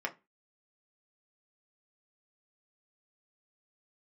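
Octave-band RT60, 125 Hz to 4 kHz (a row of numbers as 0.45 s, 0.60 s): 0.25 s, 0.30 s, 0.25 s, 0.25 s, 0.25 s, 0.20 s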